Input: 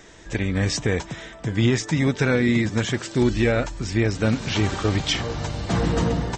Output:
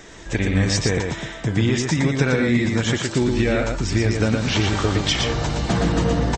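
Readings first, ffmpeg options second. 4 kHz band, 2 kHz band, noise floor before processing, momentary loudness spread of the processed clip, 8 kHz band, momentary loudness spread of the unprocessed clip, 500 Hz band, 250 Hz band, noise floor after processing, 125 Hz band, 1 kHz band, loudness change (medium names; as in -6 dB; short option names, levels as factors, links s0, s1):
+3.5 dB, +2.5 dB, -43 dBFS, 5 LU, +4.0 dB, 8 LU, +1.5 dB, +2.0 dB, -36 dBFS, +2.5 dB, +3.0 dB, +2.0 dB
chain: -filter_complex "[0:a]acompressor=threshold=0.0891:ratio=6,asplit=2[s0][s1];[s1]aecho=0:1:117:0.631[s2];[s0][s2]amix=inputs=2:normalize=0,volume=1.68"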